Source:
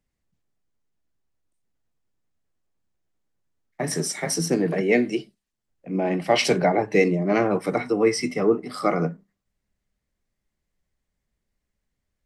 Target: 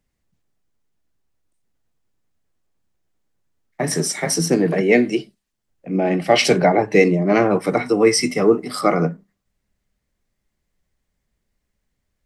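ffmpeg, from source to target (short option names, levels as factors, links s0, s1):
-filter_complex "[0:a]asettb=1/sr,asplit=3[s0][s1][s2];[s0]atrim=end=5.904[s3];[s1]atrim=start=5.9:end=6.52,asetpts=PTS-STARTPTS,afade=t=in:d=0.004:c=qsin,afade=t=out:st=0.616:d=0.004:c=qsin,bandreject=f=980:w=5.9[s4];[s2]atrim=start=6.516[s5];[s3][s4]acrossfade=d=0.004:c1=hsin:c2=qsin[s6];[s6][s5]acrossfade=d=0.004:c1=qsin:c2=hsin,asettb=1/sr,asplit=3[s7][s8][s9];[s7]atrim=end=7.864[s10];[s8]atrim=start=7.86:end=8.81,asetpts=PTS-STARTPTS,afade=t=in:d=0.004:c=qsin,afade=t=out:st=0.946:d=0.004:c=qsin,highshelf=f=5000:g=8.5[s11];[s9]atrim=start=8.806[s12];[s10][s11]acrossfade=d=0.004:c1=hsin:c2=qsin[s13];[s13][s12]acrossfade=d=0.004:c1=qsin:c2=hsin,volume=1.78"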